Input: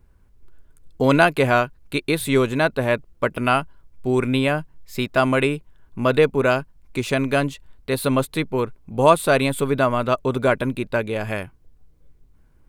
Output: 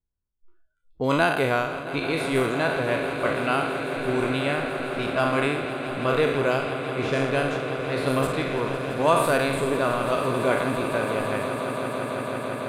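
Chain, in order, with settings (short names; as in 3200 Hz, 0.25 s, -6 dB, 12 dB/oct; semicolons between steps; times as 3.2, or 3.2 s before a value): spectral trails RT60 0.89 s; low-pass opened by the level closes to 1400 Hz, open at -12 dBFS; on a send: swelling echo 0.167 s, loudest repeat 8, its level -14.5 dB; on the sum: spectral noise reduction 25 dB; gain -7.5 dB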